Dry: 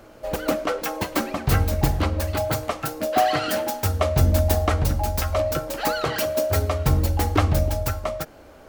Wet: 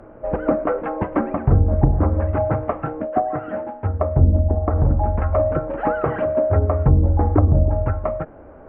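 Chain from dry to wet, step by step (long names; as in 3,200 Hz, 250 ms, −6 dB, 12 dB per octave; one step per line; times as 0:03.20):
Gaussian smoothing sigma 5.6 samples
treble cut that deepens with the level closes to 500 Hz, closed at −15 dBFS
0:03.02–0:04.76: expander for the loud parts 1.5 to 1, over −31 dBFS
level +5.5 dB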